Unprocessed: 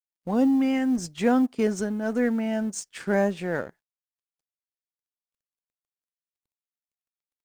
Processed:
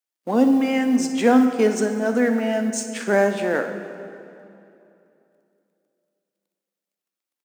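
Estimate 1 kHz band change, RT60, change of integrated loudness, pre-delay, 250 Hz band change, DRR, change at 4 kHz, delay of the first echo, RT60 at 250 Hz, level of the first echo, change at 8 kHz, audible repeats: +7.0 dB, 2.8 s, +5.0 dB, 6 ms, +4.0 dB, 6.0 dB, +7.0 dB, 60 ms, 3.1 s, -14.5 dB, +6.5 dB, 1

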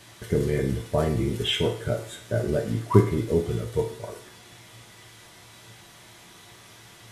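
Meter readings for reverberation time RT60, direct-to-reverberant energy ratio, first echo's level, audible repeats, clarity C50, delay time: 0.50 s, 1.5 dB, none, none, 9.0 dB, none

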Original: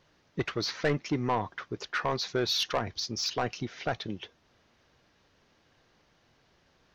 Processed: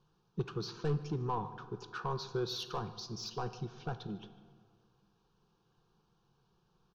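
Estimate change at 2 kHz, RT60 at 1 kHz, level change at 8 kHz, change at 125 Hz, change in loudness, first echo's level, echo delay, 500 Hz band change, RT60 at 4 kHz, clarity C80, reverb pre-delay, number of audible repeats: -14.5 dB, 1.9 s, -12.0 dB, -1.5 dB, -7.5 dB, -23.0 dB, 0.15 s, -7.0 dB, 1.2 s, 13.5 dB, 12 ms, 1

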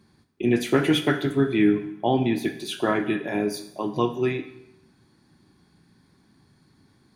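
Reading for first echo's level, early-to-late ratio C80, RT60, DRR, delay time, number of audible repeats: none, 13.5 dB, 0.80 s, 7.5 dB, none, none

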